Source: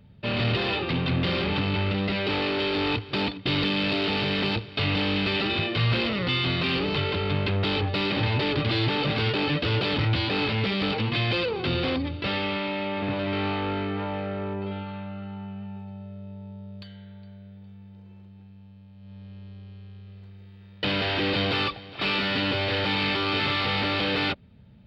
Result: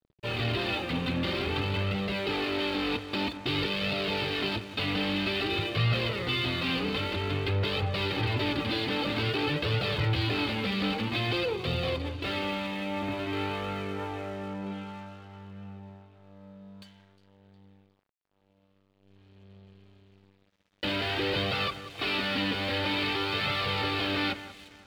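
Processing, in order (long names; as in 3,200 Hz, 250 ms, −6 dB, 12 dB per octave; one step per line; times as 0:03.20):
flanger 0.51 Hz, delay 1.4 ms, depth 2.8 ms, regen −17%
delay that swaps between a low-pass and a high-pass 179 ms, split 2,200 Hz, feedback 64%, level −11 dB
dead-zone distortion −50 dBFS
0:11.55–0:12.03: parametric band 1,500 Hz −7 dB 0.26 octaves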